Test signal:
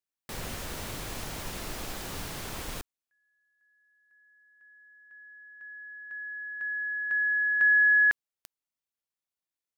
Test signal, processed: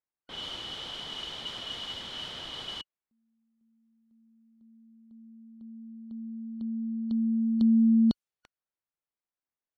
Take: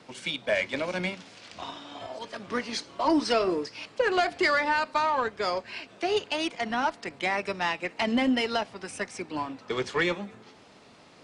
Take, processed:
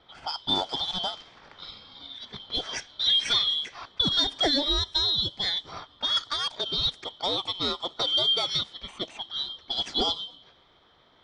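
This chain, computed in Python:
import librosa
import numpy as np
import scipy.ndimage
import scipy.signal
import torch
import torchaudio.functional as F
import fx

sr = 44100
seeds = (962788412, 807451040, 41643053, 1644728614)

y = fx.band_shuffle(x, sr, order='2413')
y = fx.env_lowpass(y, sr, base_hz=1800.0, full_db=-24.0)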